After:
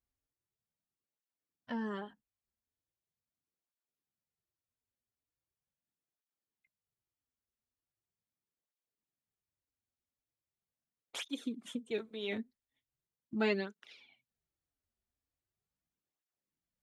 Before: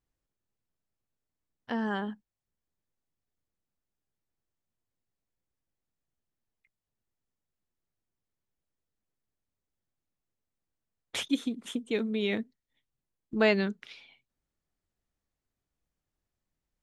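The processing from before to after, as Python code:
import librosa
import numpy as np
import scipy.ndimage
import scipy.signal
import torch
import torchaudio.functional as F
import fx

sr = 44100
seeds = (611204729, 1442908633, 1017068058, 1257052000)

y = fx.flanger_cancel(x, sr, hz=0.4, depth_ms=6.8)
y = y * librosa.db_to_amplitude(-4.5)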